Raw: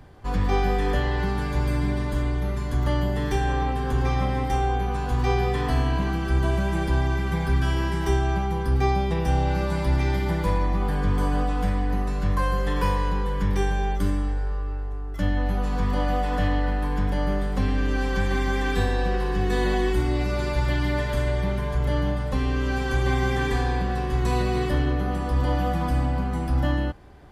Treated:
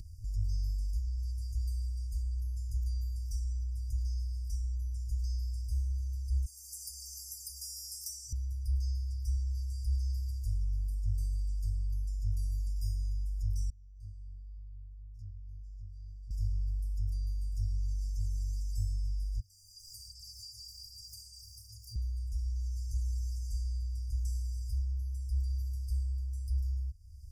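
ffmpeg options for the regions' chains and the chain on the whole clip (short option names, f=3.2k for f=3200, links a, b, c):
-filter_complex "[0:a]asettb=1/sr,asplit=3[a][b][c];[a]atrim=end=6.464[d];[b]atrim=start=6.46:end=8.33,asetpts=PTS-STARTPTS,afade=t=in:d=0.004:c=qsin,afade=t=out:st=1.866:d=0.004:c=qsin,aderivative,acontrast=75[e];[c]atrim=start=8.326[f];[d][e]acrossfade=d=0.004:c1=hsin:c2=qsin[g];[g][f]acrossfade=d=0.004:c1=qsin:c2=hsin,asettb=1/sr,asplit=3[h][i][j];[h]atrim=end=13.704[k];[i]atrim=start=13.7:end=16.31,asetpts=PTS-STARTPTS,afade=t=in:d=0.004:c=qsin,afade=t=out:st=2.606:d=0.004:c=qsin,bandpass=f=460:t=q:w=1.5,flanger=delay=17:depth=7.7:speed=2[l];[j]atrim=start=16.306[m];[k][l]acrossfade=d=0.004:c1=hsin:c2=qsin[n];[n][m]acrossfade=d=0.004:c1=qsin:c2=hsin,asettb=1/sr,asplit=3[o][p][q];[o]atrim=end=19.404[r];[p]atrim=start=19.4:end=21.96,asetpts=PTS-STARTPTS,afade=t=in:d=0.004:c=qsin,afade=t=out:st=2.556:d=0.004:c=qsin,highpass=f=230:w=0.5412,highpass=f=230:w=1.3066,highshelf=f=4.5k:t=q:w=1.5:g=-10.5,aphaser=in_gain=1:out_gain=1:delay=2.9:decay=0.44:speed=1.3:type=sinusoidal[s];[q]atrim=start=21.956[t];[r][s]acrossfade=d=0.004:c1=hsin:c2=qsin[u];[u][t]acrossfade=d=0.004:c1=qsin:c2=hsin,afftfilt=real='re*(1-between(b*sr/4096,110,4700))':imag='im*(1-between(b*sr/4096,110,4700))':win_size=4096:overlap=0.75,acompressor=mode=upward:threshold=-26dB:ratio=2.5,volume=-8dB"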